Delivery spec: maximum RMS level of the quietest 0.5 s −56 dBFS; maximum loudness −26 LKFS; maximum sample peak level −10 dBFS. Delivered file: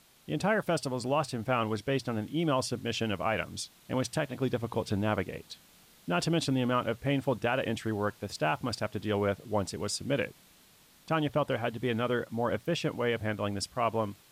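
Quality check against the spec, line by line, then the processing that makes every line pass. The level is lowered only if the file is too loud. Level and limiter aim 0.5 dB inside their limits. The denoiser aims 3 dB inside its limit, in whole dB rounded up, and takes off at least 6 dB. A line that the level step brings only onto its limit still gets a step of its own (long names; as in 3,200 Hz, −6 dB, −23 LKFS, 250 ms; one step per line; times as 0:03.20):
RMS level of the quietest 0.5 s −60 dBFS: in spec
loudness −31.5 LKFS: in spec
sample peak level −16.5 dBFS: in spec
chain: no processing needed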